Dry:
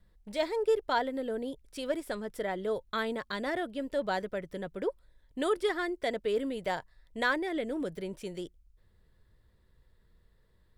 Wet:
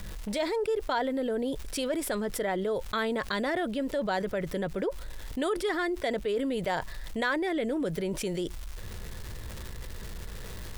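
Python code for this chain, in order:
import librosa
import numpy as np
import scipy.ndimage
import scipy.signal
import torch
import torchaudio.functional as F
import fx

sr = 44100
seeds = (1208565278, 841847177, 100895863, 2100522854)

y = fx.dmg_crackle(x, sr, seeds[0], per_s=460.0, level_db=-59.0)
y = fx.env_flatten(y, sr, amount_pct=70)
y = F.gain(torch.from_numpy(y), -3.5).numpy()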